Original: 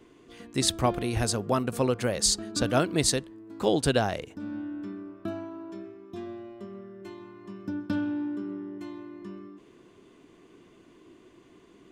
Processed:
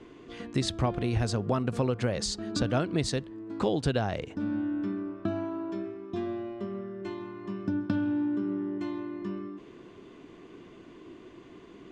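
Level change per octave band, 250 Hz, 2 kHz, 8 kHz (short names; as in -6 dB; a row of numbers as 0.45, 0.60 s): +1.0, -3.5, -11.5 dB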